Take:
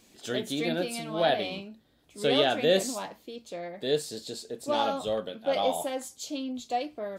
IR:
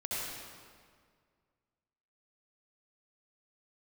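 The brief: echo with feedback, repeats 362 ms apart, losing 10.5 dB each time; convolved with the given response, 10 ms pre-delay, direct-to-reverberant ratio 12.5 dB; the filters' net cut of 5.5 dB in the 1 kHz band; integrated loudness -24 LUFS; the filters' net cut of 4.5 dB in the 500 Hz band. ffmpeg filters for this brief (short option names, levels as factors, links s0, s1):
-filter_complex "[0:a]equalizer=f=500:t=o:g=-3.5,equalizer=f=1000:t=o:g=-6.5,aecho=1:1:362|724|1086:0.299|0.0896|0.0269,asplit=2[s0][s1];[1:a]atrim=start_sample=2205,adelay=10[s2];[s1][s2]afir=irnorm=-1:irlink=0,volume=0.141[s3];[s0][s3]amix=inputs=2:normalize=0,volume=2.51"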